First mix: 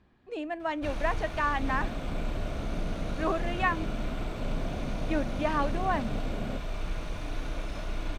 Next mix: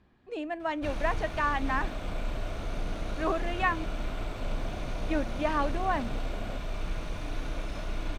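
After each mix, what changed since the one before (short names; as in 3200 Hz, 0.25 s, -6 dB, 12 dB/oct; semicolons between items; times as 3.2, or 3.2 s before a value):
second sound: add tilt +3.5 dB/oct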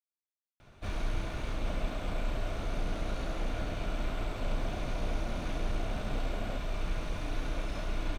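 speech: muted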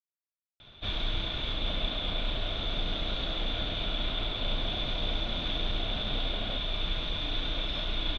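master: add synth low-pass 3500 Hz, resonance Q 15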